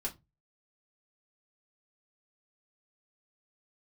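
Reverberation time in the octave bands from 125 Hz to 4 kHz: 0.45, 0.30, 0.25, 0.20, 0.15, 0.15 s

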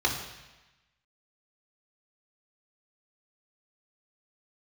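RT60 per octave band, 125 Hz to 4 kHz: 1.2, 1.1, 1.0, 1.1, 1.2, 1.1 s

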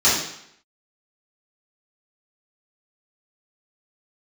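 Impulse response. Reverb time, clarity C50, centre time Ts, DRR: 0.70 s, 2.0 dB, 54 ms, -12.0 dB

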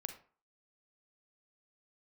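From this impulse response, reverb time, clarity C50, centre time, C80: 0.45 s, 9.5 dB, 11 ms, 14.5 dB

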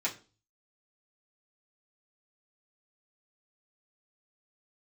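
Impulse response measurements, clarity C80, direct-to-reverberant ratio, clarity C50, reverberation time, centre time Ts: 19.5 dB, -7.5 dB, 14.0 dB, 0.35 s, 14 ms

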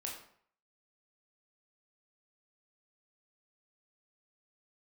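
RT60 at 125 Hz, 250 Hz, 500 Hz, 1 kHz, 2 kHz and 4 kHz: 0.65, 0.55, 0.55, 0.60, 0.55, 0.45 s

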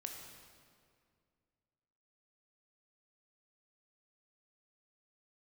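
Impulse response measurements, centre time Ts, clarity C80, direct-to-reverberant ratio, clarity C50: 62 ms, 5.0 dB, 2.0 dB, 3.5 dB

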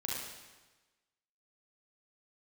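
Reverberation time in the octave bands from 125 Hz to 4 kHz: 1.3, 1.2, 1.2, 1.2, 1.2, 1.1 s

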